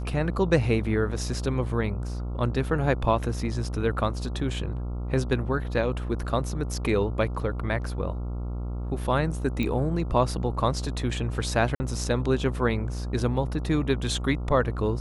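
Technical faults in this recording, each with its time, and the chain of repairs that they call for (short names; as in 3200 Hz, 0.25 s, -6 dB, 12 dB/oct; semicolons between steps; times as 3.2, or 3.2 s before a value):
buzz 60 Hz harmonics 23 -31 dBFS
9.63 pop -16 dBFS
11.75–11.8 gap 50 ms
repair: de-click; de-hum 60 Hz, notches 23; interpolate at 11.75, 50 ms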